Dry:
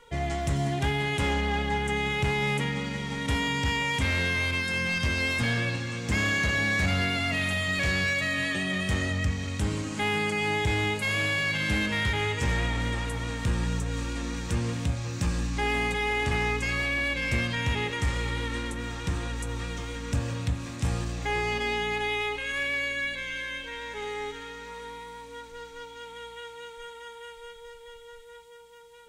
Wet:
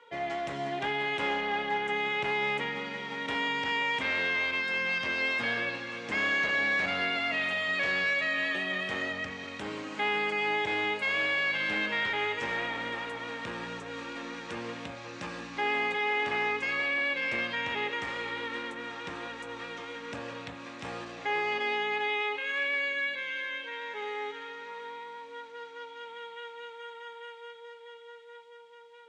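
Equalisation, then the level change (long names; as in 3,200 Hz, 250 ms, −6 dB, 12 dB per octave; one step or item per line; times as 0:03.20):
band-pass filter 390–3,300 Hz
0.0 dB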